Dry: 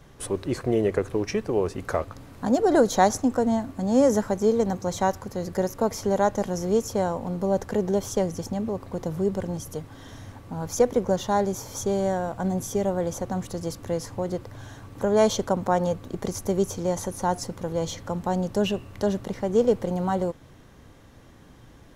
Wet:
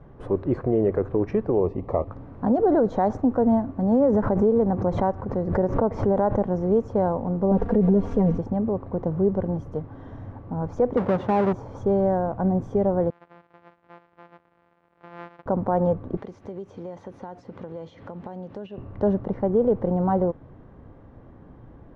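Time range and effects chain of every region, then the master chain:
1.60–2.07 s: Butterworth band-stop 1.5 kHz, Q 2.2 + distance through air 76 m
3.99–6.47 s: treble shelf 3.9 kHz -6 dB + swell ahead of each attack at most 84 dB/s
7.51–8.38 s: one-bit delta coder 64 kbps, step -36 dBFS + bass shelf 430 Hz +8 dB + comb 4.3 ms, depth 90%
10.97–11.53 s: square wave that keeps the level + high-pass 59 Hz + bass shelf 100 Hz -10 dB
13.10–15.46 s: sorted samples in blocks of 256 samples + low-pass 2.4 kHz + differentiator
16.17–18.78 s: frequency weighting D + compression, threshold -36 dBFS
whole clip: low-pass 1 kHz 12 dB/octave; peak limiter -16 dBFS; trim +4 dB

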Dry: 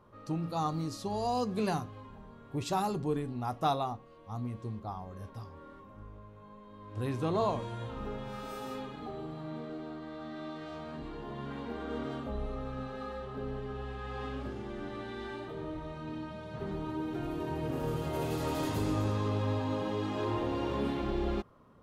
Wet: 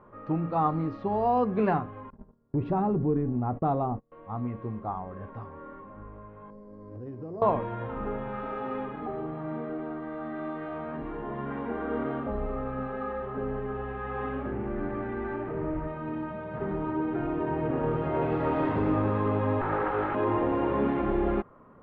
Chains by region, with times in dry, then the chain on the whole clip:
2.10–4.12 s: gate -48 dBFS, range -28 dB + tilt shelf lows +9 dB, about 680 Hz + compression 2:1, threshold -31 dBFS
6.50–7.42 s: high-order bell 1.9 kHz -12 dB 2.7 oct + compression 5:1, threshold -42 dBFS + careless resampling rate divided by 8×, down filtered, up hold
14.51–15.88 s: one-bit delta coder 32 kbps, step -46 dBFS + bass shelf 170 Hz +8 dB + decimation joined by straight lines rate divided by 8×
19.61–20.15 s: comb filter that takes the minimum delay 2.3 ms + peaking EQ 1.4 kHz +7 dB 0.83 oct
whole clip: low-pass 2.1 kHz 24 dB/octave; peaking EQ 75 Hz -7 dB 2 oct; trim +7.5 dB

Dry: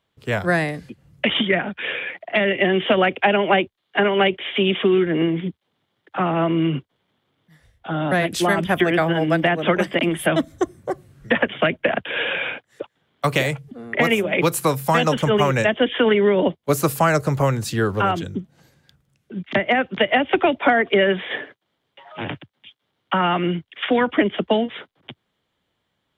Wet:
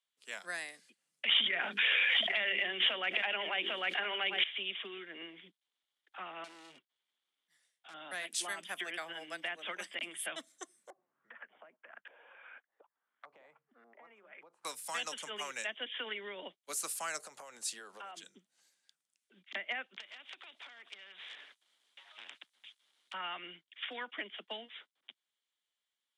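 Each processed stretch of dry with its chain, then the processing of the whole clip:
1.28–4.44 s: hum notches 50/100/150/200/250/300/350/400/450 Hz + delay 800 ms -18.5 dB + level flattener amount 100%
6.44–7.94 s: low-pass that closes with the level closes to 2.4 kHz, closed at -17 dBFS + overload inside the chain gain 25.5 dB
10.90–14.65 s: compression, threshold -31 dBFS + LFO low-pass saw up 1.7 Hz 720–1700 Hz
17.18–18.17 s: peaking EQ 680 Hz +8 dB 1.4 oct + compression 16:1, threshold -20 dBFS
20.00–23.14 s: compression 8:1, threshold -27 dBFS + spectrum-flattening compressor 2:1
whole clip: Chebyshev band-pass 200–9400 Hz, order 3; differentiator; trim -5 dB

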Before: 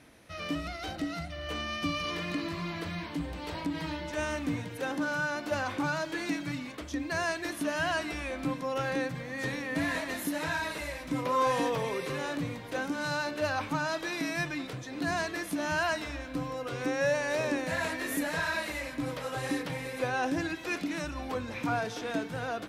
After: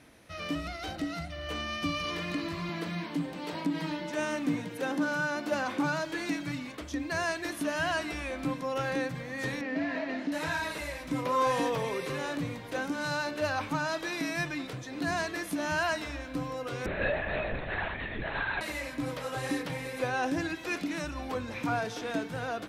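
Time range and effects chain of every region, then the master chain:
2.69–6.00 s: high-pass 160 Hz 24 dB/octave + bass shelf 270 Hz +6.5 dB
9.61–10.32 s: compression 2:1, threshold -33 dBFS + modulation noise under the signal 12 dB + cabinet simulation 130–4100 Hz, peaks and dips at 140 Hz -10 dB, 260 Hz +8 dB, 650 Hz +6 dB, 1.1 kHz -4 dB, 3.5 kHz -7 dB
16.86–18.61 s: bass shelf 410 Hz -7.5 dB + LPC vocoder at 8 kHz whisper
whole clip: none

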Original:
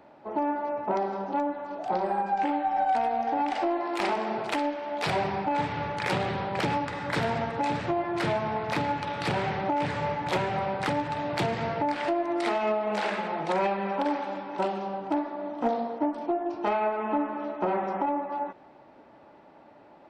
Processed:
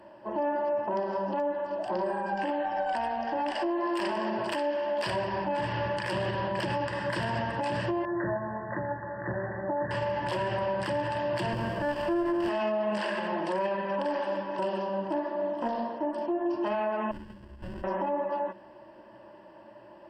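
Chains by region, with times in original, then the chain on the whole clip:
8.05–9.91 s: band-stop 960 Hz + gate -27 dBFS, range -6 dB + brick-wall FIR low-pass 2 kHz
11.53–12.49 s: distance through air 250 m + sliding maximum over 17 samples
17.11–17.84 s: vowel filter a + doubling 15 ms -12 dB + sliding maximum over 65 samples
whole clip: rippled EQ curve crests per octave 1.3, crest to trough 13 dB; peak limiter -22 dBFS; hum notches 50/100/150/200 Hz

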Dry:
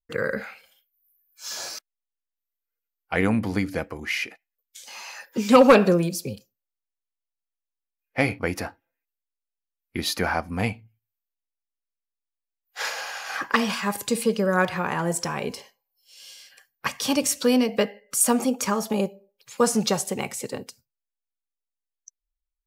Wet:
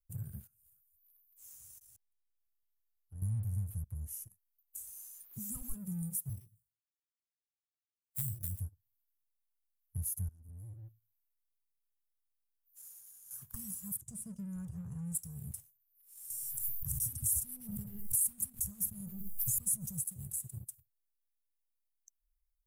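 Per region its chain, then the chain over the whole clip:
0.47–3.22 s: chunks repeated in reverse 166 ms, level -8 dB + treble shelf 8.9 kHz -8.5 dB + compression 2:1, threshold -50 dBFS
6.29–8.60 s: high-pass 110 Hz + careless resampling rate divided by 8×, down filtered, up hold + decay stretcher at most 140 dB/s
10.28–13.31 s: compression 2.5:1, threshold -43 dBFS + transformer saturation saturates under 2.2 kHz
13.97–15.15 s: low-pass 5 kHz + hum notches 50/100/150 Hz
16.30–20.03 s: bass shelf 130 Hz +9.5 dB + swell ahead of each attack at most 21 dB/s
whole clip: inverse Chebyshev band-stop 280–4500 Hz, stop band 50 dB; compression 2:1, threshold -52 dBFS; waveshaping leveller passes 1; trim +6.5 dB

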